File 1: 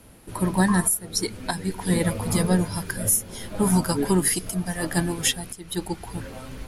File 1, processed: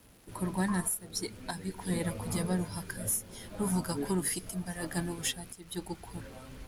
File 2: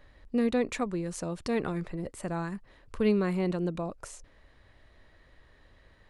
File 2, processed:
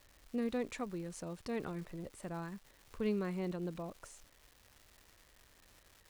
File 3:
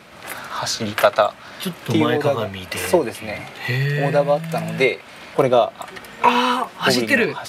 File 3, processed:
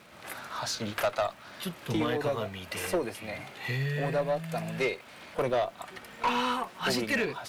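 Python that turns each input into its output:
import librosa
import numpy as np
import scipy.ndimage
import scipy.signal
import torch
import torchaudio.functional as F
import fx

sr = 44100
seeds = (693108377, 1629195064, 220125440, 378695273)

y = fx.tube_stage(x, sr, drive_db=12.0, bias=0.2)
y = fx.dmg_crackle(y, sr, seeds[0], per_s=520.0, level_db=-41.0)
y = y * librosa.db_to_amplitude(-9.0)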